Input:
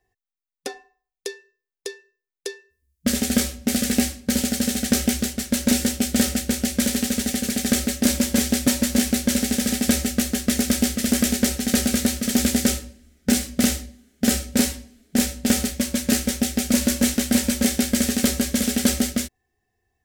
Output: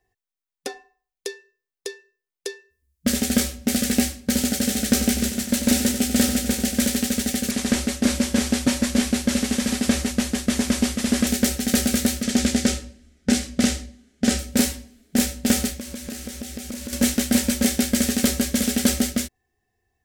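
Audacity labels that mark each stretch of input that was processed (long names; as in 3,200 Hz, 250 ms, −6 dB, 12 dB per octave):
4.320000	6.850000	repeating echo 93 ms, feedback 58%, level −9 dB
7.510000	11.270000	variable-slope delta modulation 64 kbit/s
12.230000	14.390000	low-pass filter 8,000 Hz
15.730000	16.930000	downward compressor, threshold −30 dBFS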